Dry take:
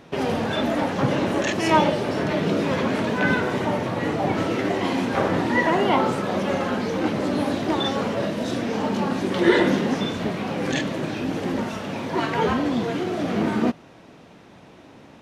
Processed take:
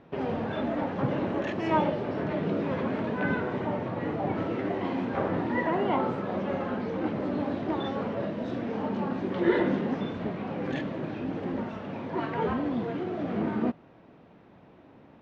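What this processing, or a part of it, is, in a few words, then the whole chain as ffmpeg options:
phone in a pocket: -af "lowpass=3700,highshelf=f=2300:g=-10,volume=0.501"

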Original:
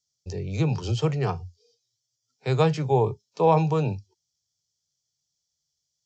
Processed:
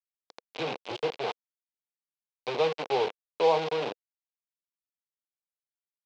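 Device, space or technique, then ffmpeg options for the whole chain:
hand-held game console: -af "acrusher=bits=3:mix=0:aa=0.000001,highpass=430,equalizer=f=490:t=q:w=4:g=4,equalizer=f=1300:t=q:w=4:g=-7,equalizer=f=1800:t=q:w=4:g=-8,lowpass=f=4200:w=0.5412,lowpass=f=4200:w=1.3066,volume=0.631"

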